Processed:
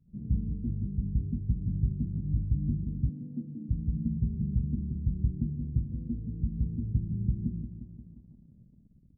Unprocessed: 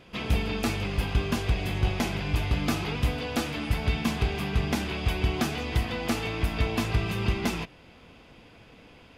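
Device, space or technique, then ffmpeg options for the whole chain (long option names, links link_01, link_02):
the neighbour's flat through the wall: -filter_complex "[0:a]lowpass=frequency=240:width=0.5412,lowpass=frequency=240:width=1.3066,equalizer=frequency=150:width_type=o:width=0.9:gain=6,aecho=1:1:176|352|528|704|880|1056|1232:0.355|0.213|0.128|0.0766|0.046|0.0276|0.0166,adynamicequalizer=threshold=0.00316:dfrequency=970:dqfactor=0.72:tfrequency=970:tqfactor=0.72:attack=5:release=100:ratio=0.375:range=3.5:mode=cutabove:tftype=bell,asettb=1/sr,asplit=3[link_01][link_02][link_03];[link_01]atrim=end=3.094[link_04];[link_02]atrim=start=3.09:end=3.69,asetpts=PTS-STARTPTS,afade=type=in:duration=0.004:curve=qsin,afade=type=out:start_time=0.596:duration=0.004:curve=qsin,highpass=frequency=160:width=0.5412,highpass=frequency=160:width=1.3066[link_05];[link_03]atrim=start=3.686[link_06];[link_04][link_05]acrossfade=duration=0.004:curve1=hsin:curve2=qsin[link_07];[link_07][link_06]acrossfade=duration=0.004:curve1=qsin:curve2=hsin,anlmdn=0.01,volume=-4dB"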